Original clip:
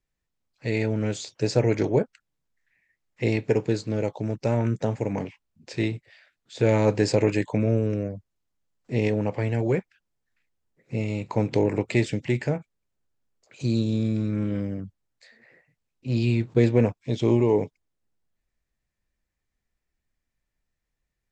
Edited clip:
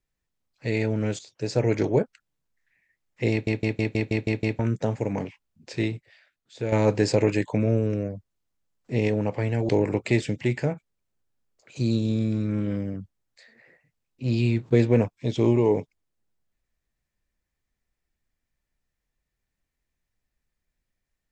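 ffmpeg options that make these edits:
-filter_complex "[0:a]asplit=12[s0][s1][s2][s3][s4][s5][s6][s7][s8][s9][s10][s11];[s0]atrim=end=1.19,asetpts=PTS-STARTPTS,afade=t=out:st=1.186:d=0.004:c=hsin:silence=0.237137[s12];[s1]atrim=start=1.19:end=3.472,asetpts=PTS-STARTPTS,afade=t=in:d=0.55:silence=0.237137[s13];[s2]atrim=start=3.308:end=3.472[s14];[s3]atrim=start=3.308:end=3.472[s15];[s4]atrim=start=3.308:end=3.472[s16];[s5]atrim=start=3.308:end=3.472[s17];[s6]atrim=start=3.308:end=3.472[s18];[s7]atrim=start=3.308:end=3.472[s19];[s8]atrim=start=3.308:end=3.472[s20];[s9]atrim=start=4.588:end=6.72,asetpts=PTS-STARTPTS,afade=t=out:st=1.172:d=0.96:silence=0.354813[s21];[s10]atrim=start=6.72:end=9.692,asetpts=PTS-STARTPTS,afade=t=in:d=0.004:c=hsin:silence=0.354813[s22];[s11]atrim=start=11.528[s23];[s12][s13]concat=n=2:v=0:a=1[s24];[s24][s14]acrossfade=d=0.004:c1=hsin:c2=hsin[s25];[s25][s15]acrossfade=d=0.004:c1=hsin:c2=hsin[s26];[s26][s16]acrossfade=d=0.004:c1=hsin:c2=hsin[s27];[s27][s17]acrossfade=d=0.004:c1=hsin:c2=hsin[s28];[s28][s18]acrossfade=d=0.004:c1=hsin:c2=hsin[s29];[s29][s19]acrossfade=d=0.004:c1=hsin:c2=hsin[s30];[s30][s20]acrossfade=d=0.004:c1=hsin:c2=hsin[s31];[s21][s22]concat=n=2:v=0:a=1[s32];[s31][s32]acrossfade=d=0.004:c1=hsin:c2=hsin[s33];[s33][s23]acrossfade=d=0.004:c1=hsin:c2=hsin"

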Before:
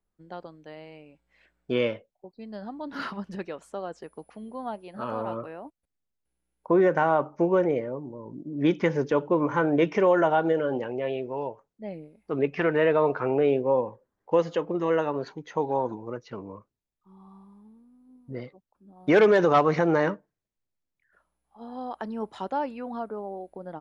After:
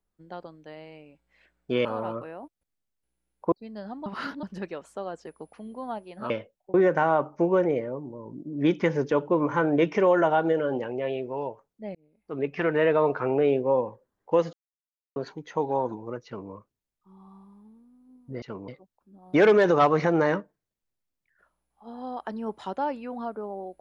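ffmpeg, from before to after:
-filter_complex "[0:a]asplit=12[s0][s1][s2][s3][s4][s5][s6][s7][s8][s9][s10][s11];[s0]atrim=end=1.852[s12];[s1]atrim=start=5.068:end=6.742[s13];[s2]atrim=start=2.288:end=2.832[s14];[s3]atrim=start=2.828:end=3.202,asetpts=PTS-STARTPTS,areverse[s15];[s4]atrim=start=3.198:end=5.072[s16];[s5]atrim=start=1.848:end=2.292[s17];[s6]atrim=start=6.738:end=11.95,asetpts=PTS-STARTPTS,afade=t=out:st=5.208:d=0.004:c=hsin[s18];[s7]atrim=start=11.95:end=14.53,asetpts=PTS-STARTPTS,afade=t=in:d=1.03:c=qsin,afade=t=out:st=2.576:d=0.004:c=hsin[s19];[s8]atrim=start=14.53:end=15.16,asetpts=PTS-STARTPTS,volume=0[s20];[s9]atrim=start=15.16:end=18.422,asetpts=PTS-STARTPTS,afade=t=in:d=0.004:c=hsin[s21];[s10]atrim=start=16.248:end=16.512[s22];[s11]atrim=start=18.418[s23];[s12][s13]acrossfade=d=0.004:c1=hsin:c2=hsin[s24];[s24][s14]acrossfade=d=0.004:c1=hsin:c2=hsin[s25];[s25][s15]acrossfade=d=0.004:c1=hsin:c2=hsin[s26];[s26][s16]acrossfade=d=0.004:c1=hsin:c2=hsin[s27];[s27][s17]acrossfade=d=0.004:c1=hsin:c2=hsin[s28];[s18][s19][s20][s21]concat=n=4:v=0:a=1[s29];[s28][s29]acrossfade=d=0.004:c1=hsin:c2=hsin[s30];[s30][s22]acrossfade=d=0.004:c1=hsin:c2=hsin[s31];[s31][s23]acrossfade=d=0.004:c1=hsin:c2=hsin"

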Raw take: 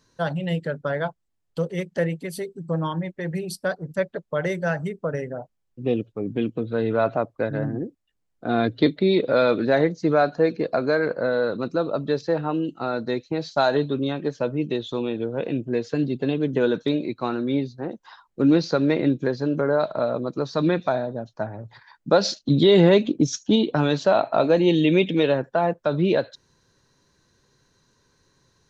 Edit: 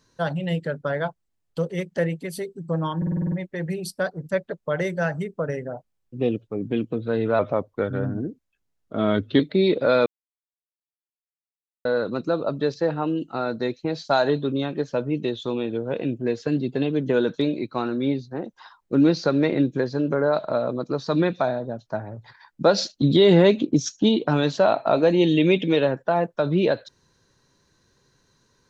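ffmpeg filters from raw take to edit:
-filter_complex "[0:a]asplit=12[s0][s1][s2][s3][s4][s5][s6][s7][s8][s9][s10][s11];[s0]atrim=end=3.022[s12];[s1]atrim=start=2.968:end=3.022[s13];[s2]atrim=start=2.968:end=3.022[s14];[s3]atrim=start=2.968:end=3.022[s15];[s4]atrim=start=2.968:end=3.022[s16];[s5]atrim=start=2.968:end=3.022[s17];[s6]atrim=start=2.968:end=3.022[s18];[s7]atrim=start=2.968:end=7.044[s19];[s8]atrim=start=7.04:end=8.87,asetpts=PTS-STARTPTS,asetrate=40131,aresample=44100[s20];[s9]atrim=start=8.866:end=9.53,asetpts=PTS-STARTPTS,afade=t=out:st=0.66:d=0.004:c=hsin[s21];[s10]atrim=start=9.53:end=11.32,asetpts=PTS-STARTPTS,volume=0[s22];[s11]atrim=start=11.32,asetpts=PTS-STARTPTS,afade=t=in:d=0.004:c=hsin[s23];[s12][s13]acrossfade=d=0.004:c1=hsin:c2=hsin[s24];[s24][s14]acrossfade=d=0.004:c1=hsin:c2=hsin[s25];[s25][s15]acrossfade=d=0.004:c1=hsin:c2=hsin[s26];[s26][s16]acrossfade=d=0.004:c1=hsin:c2=hsin[s27];[s27][s17]acrossfade=d=0.004:c1=hsin:c2=hsin[s28];[s28][s18]acrossfade=d=0.004:c1=hsin:c2=hsin[s29];[s29][s19]acrossfade=d=0.004:c1=hsin:c2=hsin[s30];[s30][s20]acrossfade=d=0.004:c1=hsin:c2=hsin[s31];[s21][s22][s23]concat=n=3:v=0:a=1[s32];[s31][s32]acrossfade=d=0.004:c1=hsin:c2=hsin"

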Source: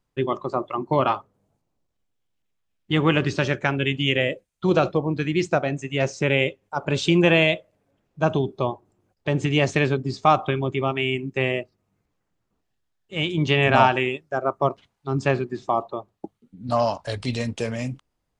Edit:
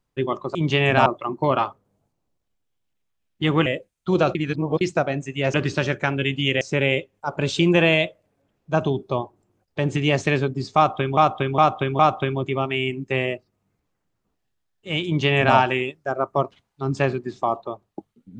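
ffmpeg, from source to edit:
-filter_complex "[0:a]asplit=11[s0][s1][s2][s3][s4][s5][s6][s7][s8][s9][s10];[s0]atrim=end=0.552[s11];[s1]atrim=start=13.318:end=13.832[s12];[s2]atrim=start=0.548:end=3.152[s13];[s3]atrim=start=4.218:end=4.912[s14];[s4]atrim=start=4.908:end=5.372,asetpts=PTS-STARTPTS,areverse[s15];[s5]atrim=start=5.368:end=6.102[s16];[s6]atrim=start=3.148:end=4.222[s17];[s7]atrim=start=6.098:end=10.662[s18];[s8]atrim=start=10.248:end=10.662[s19];[s9]atrim=start=10.248:end=10.662[s20];[s10]atrim=start=10.248[s21];[s11][s12]acrossfade=d=0.004:c1=hsin:c2=hsin[s22];[s22][s13]acrossfade=d=0.004:c1=hsin:c2=hsin[s23];[s23][s14]acrossfade=d=0.004:c1=hsin:c2=hsin[s24];[s24][s15]acrossfade=d=0.004:c1=hsin:c2=hsin[s25];[s25][s16]acrossfade=d=0.004:c1=hsin:c2=hsin[s26];[s26][s17]acrossfade=d=0.004:c1=hsin:c2=hsin[s27];[s27][s18]acrossfade=d=0.004:c1=hsin:c2=hsin[s28];[s28][s19]acrossfade=d=0.004:c1=hsin:c2=hsin[s29];[s29][s20]acrossfade=d=0.004:c1=hsin:c2=hsin[s30];[s30][s21]acrossfade=d=0.004:c1=hsin:c2=hsin"

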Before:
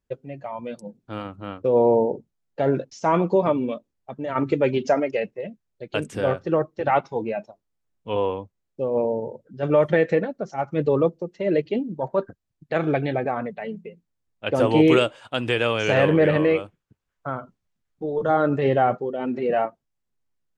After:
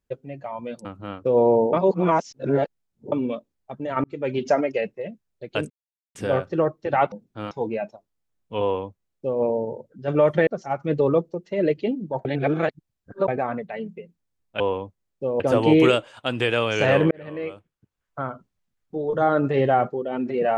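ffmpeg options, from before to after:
-filter_complex "[0:a]asplit=14[s0][s1][s2][s3][s4][s5][s6][s7][s8][s9][s10][s11][s12][s13];[s0]atrim=end=0.852[s14];[s1]atrim=start=1.238:end=2.122[s15];[s2]atrim=start=2.118:end=3.512,asetpts=PTS-STARTPTS,areverse[s16];[s3]atrim=start=3.508:end=4.43,asetpts=PTS-STARTPTS,afade=t=out:st=0.918:d=0.004:c=hsin[s17];[s4]atrim=start=4.43:end=6.09,asetpts=PTS-STARTPTS,afade=t=in:d=0.43,afade=t=out:st=1.656:d=0.004:c=hsin,apad=pad_dur=0.45[s18];[s5]atrim=start=6.09:end=7.062,asetpts=PTS-STARTPTS,afade=t=in:d=0.004:c=hsin[s19];[s6]atrim=start=0.848:end=1.242[s20];[s7]atrim=start=7.058:end=10.022[s21];[s8]atrim=start=10.348:end=12.132[s22];[s9]atrim=start=12.128:end=13.162,asetpts=PTS-STARTPTS,areverse[s23];[s10]atrim=start=13.158:end=14.482[s24];[s11]atrim=start=8.168:end=8.972[s25];[s12]atrim=start=14.478:end=16.19,asetpts=PTS-STARTPTS,afade=t=out:st=1.708:d=0.004:c=hsin[s26];[s13]atrim=start=16.19,asetpts=PTS-STARTPTS,afade=t=in:d=1.08[s27];[s14][s15]acrossfade=d=0.004:c1=hsin:c2=hsin[s28];[s28][s16]acrossfade=d=0.004:c1=hsin:c2=hsin[s29];[s17][s18][s19]concat=n=3:v=0:a=1[s30];[s29][s30]acrossfade=d=0.004:c1=hsin:c2=hsin[s31];[s31][s20]acrossfade=d=0.004:c1=hsin:c2=hsin[s32];[s32][s21]acrossfade=d=0.004:c1=hsin:c2=hsin[s33];[s33][s22]acrossfade=d=0.004:c1=hsin:c2=hsin[s34];[s34][s23]acrossfade=d=0.004:c1=hsin:c2=hsin[s35];[s35][s24]acrossfade=d=0.004:c1=hsin:c2=hsin[s36];[s36][s25]acrossfade=d=0.004:c1=hsin:c2=hsin[s37];[s26][s27]concat=n=2:v=0:a=1[s38];[s37][s38]acrossfade=d=0.004:c1=hsin:c2=hsin"

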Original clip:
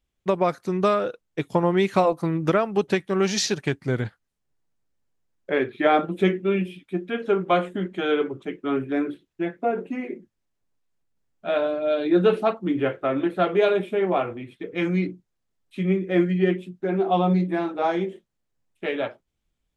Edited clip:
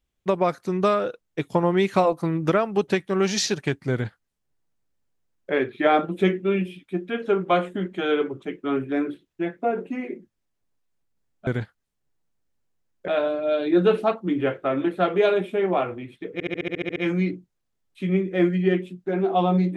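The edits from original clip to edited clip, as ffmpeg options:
-filter_complex "[0:a]asplit=12[s0][s1][s2][s3][s4][s5][s6][s7][s8][s9][s10][s11];[s0]atrim=end=11.472[s12];[s1]atrim=start=3.908:end=5.522[s13];[s2]atrim=start=11.468:end=14.792[s14];[s3]atrim=start=14.718:end=14.792[s15];[s4]atrim=start=14.718:end=14.792[s16];[s5]atrim=start=14.718:end=14.792[s17];[s6]atrim=start=14.718:end=14.792[s18];[s7]atrim=start=14.718:end=14.792[s19];[s8]atrim=start=14.718:end=14.792[s20];[s9]atrim=start=14.718:end=14.792[s21];[s10]atrim=start=14.718:end=14.792[s22];[s11]atrim=start=14.718[s23];[s12][s13]acrossfade=d=0.004:c1=hsin:c2=hsin[s24];[s24][s14]acrossfade=d=0.004:c1=hsin:c2=hsin[s25];[s25][s15]acrossfade=d=0.004:c1=hsin:c2=hsin[s26];[s26][s16]acrossfade=d=0.004:c1=hsin:c2=hsin[s27];[s27][s17]acrossfade=d=0.004:c1=hsin:c2=hsin[s28];[s28][s18]acrossfade=d=0.004:c1=hsin:c2=hsin[s29];[s29][s19]acrossfade=d=0.004:c1=hsin:c2=hsin[s30];[s30][s20]acrossfade=d=0.004:c1=hsin:c2=hsin[s31];[s31][s21]acrossfade=d=0.004:c1=hsin:c2=hsin[s32];[s32][s22]acrossfade=d=0.004:c1=hsin:c2=hsin[s33];[s33][s23]acrossfade=d=0.004:c1=hsin:c2=hsin"

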